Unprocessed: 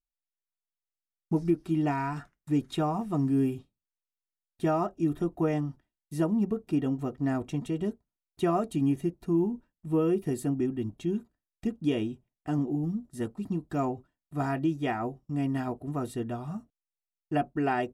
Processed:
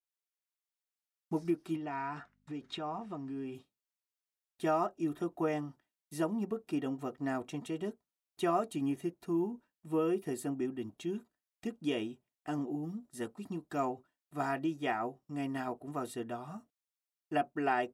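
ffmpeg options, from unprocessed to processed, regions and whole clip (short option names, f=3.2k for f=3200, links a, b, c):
-filter_complex "[0:a]asettb=1/sr,asplit=3[a][b][c];[a]atrim=end=1.764[d];[b]atrim=start=1.76:end=3.55,asetpts=PTS-STARTPTS,afade=t=in:d=0.004:c=qsin,afade=t=out:st=1.786:d=0.004:c=qsin,lowpass=4.7k,acompressor=threshold=-31dB:ratio=4:attack=3.2:release=140:knee=1:detection=peak,aeval=exprs='val(0)+0.00126*(sin(2*PI*50*n/s)+sin(2*PI*2*50*n/s)/2+sin(2*PI*3*50*n/s)/3+sin(2*PI*4*50*n/s)/4+sin(2*PI*5*50*n/s)/5)':c=same[e];[c]atrim=start=3.546[f];[d][e]acrossfade=d=0.004:c1=hsin:c2=qsin[g];[g][f]acrossfade=d=0.004:c1=qsin:c2=hsin,highpass=f=570:p=1,adynamicequalizer=threshold=0.00316:dfrequency=2100:dqfactor=0.7:tfrequency=2100:tqfactor=0.7:attack=5:release=100:ratio=0.375:range=2:mode=cutabove:tftype=highshelf"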